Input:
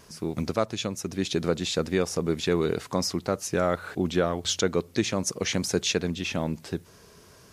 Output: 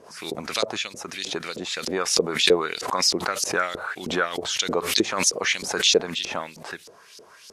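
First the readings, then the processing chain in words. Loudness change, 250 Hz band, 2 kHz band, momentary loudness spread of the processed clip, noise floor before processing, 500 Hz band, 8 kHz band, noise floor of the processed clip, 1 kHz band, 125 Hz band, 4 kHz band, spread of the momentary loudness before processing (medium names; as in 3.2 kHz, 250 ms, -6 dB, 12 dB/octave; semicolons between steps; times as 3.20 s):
+4.0 dB, -3.5 dB, +8.0 dB, 13 LU, -53 dBFS, +1.0 dB, +6.5 dB, -50 dBFS, +5.5 dB, -9.5 dB, +8.5 dB, 6 LU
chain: peaking EQ 11 kHz +14 dB 1.7 oct; LFO band-pass saw up 3.2 Hz 410–5100 Hz; loudness maximiser +17.5 dB; swell ahead of each attack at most 76 dB/s; trim -6.5 dB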